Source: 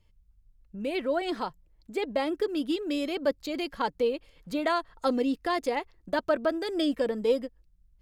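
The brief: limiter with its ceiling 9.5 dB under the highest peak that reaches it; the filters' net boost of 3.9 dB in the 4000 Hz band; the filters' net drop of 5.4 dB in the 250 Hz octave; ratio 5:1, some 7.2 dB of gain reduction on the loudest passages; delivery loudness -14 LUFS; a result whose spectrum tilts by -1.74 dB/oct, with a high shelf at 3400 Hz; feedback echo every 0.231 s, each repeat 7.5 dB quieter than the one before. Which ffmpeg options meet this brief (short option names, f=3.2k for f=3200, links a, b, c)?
-af "equalizer=f=250:t=o:g=-7,highshelf=f=3.4k:g=-3,equalizer=f=4k:t=o:g=7,acompressor=threshold=-30dB:ratio=5,alimiter=level_in=4.5dB:limit=-24dB:level=0:latency=1,volume=-4.5dB,aecho=1:1:231|462|693|924|1155:0.422|0.177|0.0744|0.0312|0.0131,volume=24dB"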